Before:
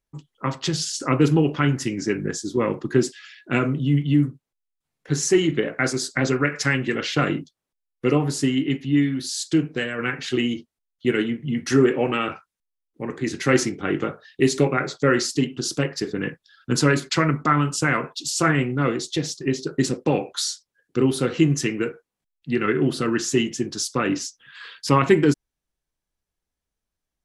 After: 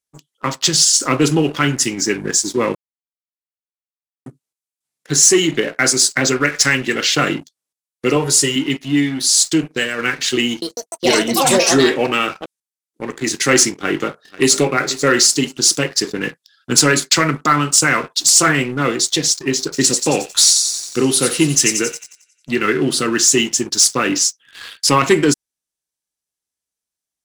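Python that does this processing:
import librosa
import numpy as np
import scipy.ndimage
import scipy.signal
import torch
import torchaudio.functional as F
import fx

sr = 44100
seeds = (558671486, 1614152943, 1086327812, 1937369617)

y = fx.comb(x, sr, ms=2.1, depth=0.65, at=(8.16, 8.56))
y = fx.echo_pitch(y, sr, ms=150, semitones=6, count=3, db_per_echo=-3.0, at=(10.47, 13.07))
y = fx.echo_throw(y, sr, start_s=13.75, length_s=0.85, ms=490, feedback_pct=30, wet_db=-16.0)
y = fx.echo_wet_highpass(y, sr, ms=90, feedback_pct=61, hz=4000.0, wet_db=-4, at=(19.72, 22.56), fade=0.02)
y = fx.edit(y, sr, fx.silence(start_s=2.75, length_s=1.51), tone=tone)
y = fx.highpass(y, sr, hz=210.0, slope=6)
y = fx.peak_eq(y, sr, hz=8700.0, db=13.5, octaves=2.2)
y = fx.leveller(y, sr, passes=2)
y = F.gain(torch.from_numpy(y), -2.5).numpy()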